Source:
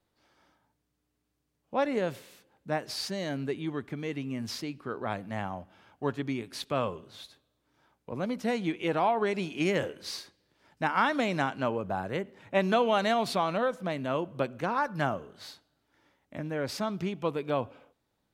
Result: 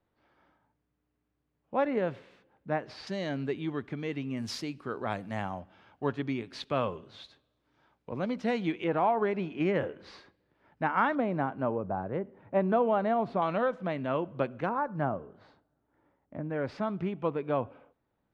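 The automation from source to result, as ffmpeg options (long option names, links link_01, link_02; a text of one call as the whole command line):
ffmpeg -i in.wav -af "asetnsamples=nb_out_samples=441:pad=0,asendcmd='3.07 lowpass f 4500;4.37 lowpass f 9900;5.6 lowpass f 4200;8.84 lowpass f 1900;11.15 lowpass f 1100;13.42 lowpass f 2600;14.69 lowpass f 1100;16.5 lowpass f 2000',lowpass=2300" out.wav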